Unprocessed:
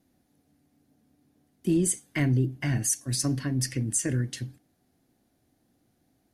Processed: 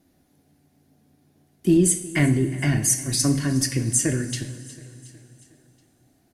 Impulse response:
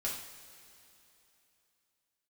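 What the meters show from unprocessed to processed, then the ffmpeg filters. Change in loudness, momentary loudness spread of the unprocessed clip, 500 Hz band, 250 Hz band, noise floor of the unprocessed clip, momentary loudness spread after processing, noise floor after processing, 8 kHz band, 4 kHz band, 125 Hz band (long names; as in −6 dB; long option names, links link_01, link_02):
+6.0 dB, 9 LU, +7.5 dB, +6.5 dB, −71 dBFS, 12 LU, −64 dBFS, +6.5 dB, +6.5 dB, +4.0 dB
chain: -filter_complex "[0:a]aecho=1:1:363|726|1089|1452:0.106|0.0583|0.032|0.0176,asplit=2[link_01][link_02];[1:a]atrim=start_sample=2205[link_03];[link_02][link_03]afir=irnorm=-1:irlink=0,volume=-5.5dB[link_04];[link_01][link_04]amix=inputs=2:normalize=0,volume=3dB"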